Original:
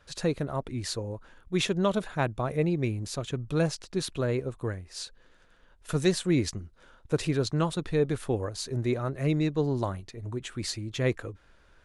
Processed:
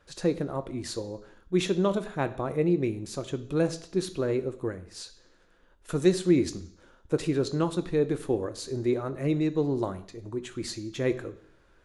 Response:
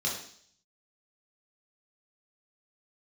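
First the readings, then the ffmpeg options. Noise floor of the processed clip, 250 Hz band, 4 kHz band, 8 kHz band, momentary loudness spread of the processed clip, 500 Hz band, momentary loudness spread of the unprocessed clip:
−61 dBFS, +2.0 dB, −3.5 dB, −2.5 dB, 12 LU, +2.0 dB, 11 LU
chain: -filter_complex "[0:a]equalizer=frequency=330:width_type=o:width=0.78:gain=6,asplit=2[link_01][link_02];[1:a]atrim=start_sample=2205[link_03];[link_02][link_03]afir=irnorm=-1:irlink=0,volume=-16dB[link_04];[link_01][link_04]amix=inputs=2:normalize=0,volume=-2.5dB"

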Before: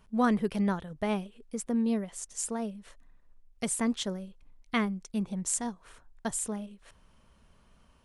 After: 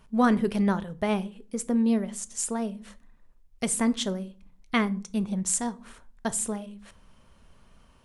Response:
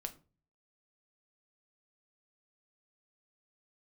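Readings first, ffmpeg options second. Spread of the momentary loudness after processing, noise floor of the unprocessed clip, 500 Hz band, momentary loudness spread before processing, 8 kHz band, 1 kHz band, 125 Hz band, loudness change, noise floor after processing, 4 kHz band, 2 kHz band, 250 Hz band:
11 LU, −63 dBFS, +4.0 dB, 11 LU, +4.0 dB, +4.0 dB, +4.0 dB, +4.0 dB, −58 dBFS, +4.0 dB, +4.0 dB, +4.5 dB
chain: -filter_complex "[0:a]asplit=2[link_01][link_02];[1:a]atrim=start_sample=2205,asetrate=34398,aresample=44100[link_03];[link_02][link_03]afir=irnorm=-1:irlink=0,volume=-2.5dB[link_04];[link_01][link_04]amix=inputs=2:normalize=0"

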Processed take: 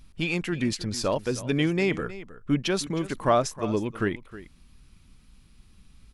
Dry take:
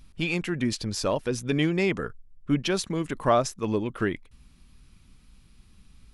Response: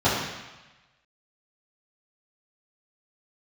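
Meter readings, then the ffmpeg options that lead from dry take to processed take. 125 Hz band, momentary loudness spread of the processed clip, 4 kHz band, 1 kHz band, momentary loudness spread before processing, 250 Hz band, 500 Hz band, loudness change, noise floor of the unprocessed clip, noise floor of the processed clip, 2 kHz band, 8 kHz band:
0.0 dB, 12 LU, 0.0 dB, 0.0 dB, 7 LU, 0.0 dB, 0.0 dB, 0.0 dB, −56 dBFS, −56 dBFS, 0.0 dB, 0.0 dB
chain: -af "aecho=1:1:314:0.158"

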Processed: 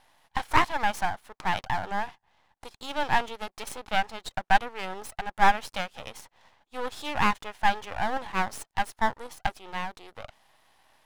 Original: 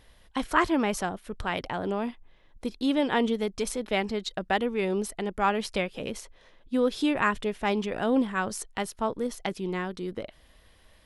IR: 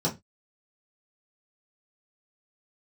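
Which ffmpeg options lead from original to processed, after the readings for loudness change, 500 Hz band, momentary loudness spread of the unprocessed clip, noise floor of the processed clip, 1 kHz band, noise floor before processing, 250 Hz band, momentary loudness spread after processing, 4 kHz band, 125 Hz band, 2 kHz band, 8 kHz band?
−0.5 dB, −8.0 dB, 11 LU, −79 dBFS, +4.5 dB, −58 dBFS, −11.0 dB, 15 LU, +0.5 dB, −2.0 dB, +2.5 dB, −3.5 dB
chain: -af "highpass=frequency=820:width_type=q:width=4.9,aeval=exprs='max(val(0),0)':channel_layout=same"

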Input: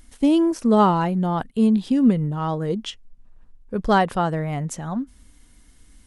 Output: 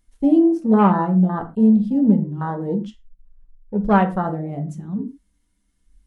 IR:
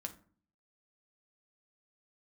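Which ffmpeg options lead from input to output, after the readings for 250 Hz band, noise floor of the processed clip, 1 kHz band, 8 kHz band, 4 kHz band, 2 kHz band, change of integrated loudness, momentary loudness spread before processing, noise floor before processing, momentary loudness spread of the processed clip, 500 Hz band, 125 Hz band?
+3.0 dB, −67 dBFS, 0.0 dB, below −15 dB, below −10 dB, −1.0 dB, +2.0 dB, 12 LU, −53 dBFS, 13 LU, 0.0 dB, +2.5 dB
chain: -filter_complex "[0:a]afwtdn=0.0631[link_01];[1:a]atrim=start_sample=2205,atrim=end_sample=6174[link_02];[link_01][link_02]afir=irnorm=-1:irlink=0,volume=2.5dB"

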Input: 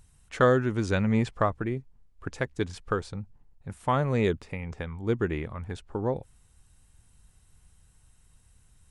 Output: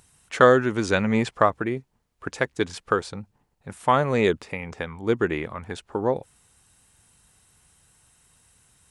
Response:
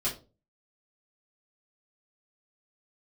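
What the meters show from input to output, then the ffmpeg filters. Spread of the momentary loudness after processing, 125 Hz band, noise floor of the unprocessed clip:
18 LU, −1.5 dB, −62 dBFS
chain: -af "highpass=frequency=330:poles=1,volume=7.5dB"

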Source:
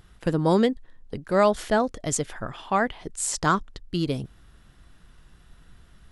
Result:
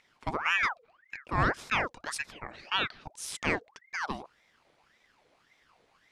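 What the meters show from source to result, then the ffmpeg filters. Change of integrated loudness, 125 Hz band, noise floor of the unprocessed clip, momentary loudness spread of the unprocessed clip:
−6.5 dB, −9.5 dB, −55 dBFS, 15 LU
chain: -filter_complex "[0:a]acrossover=split=180 7700:gain=0.224 1 0.178[link_01][link_02][link_03];[link_01][link_02][link_03]amix=inputs=3:normalize=0,aeval=exprs='val(0)*sin(2*PI*1300*n/s+1300*0.65/1.8*sin(2*PI*1.8*n/s))':channel_layout=same,volume=-4dB"

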